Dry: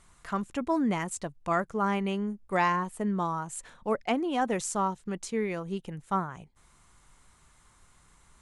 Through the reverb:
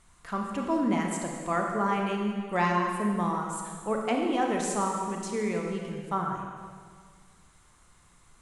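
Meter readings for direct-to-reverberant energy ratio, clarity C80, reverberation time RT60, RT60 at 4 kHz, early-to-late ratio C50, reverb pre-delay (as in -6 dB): 1.0 dB, 3.5 dB, 1.8 s, 1.8 s, 2.0 dB, 26 ms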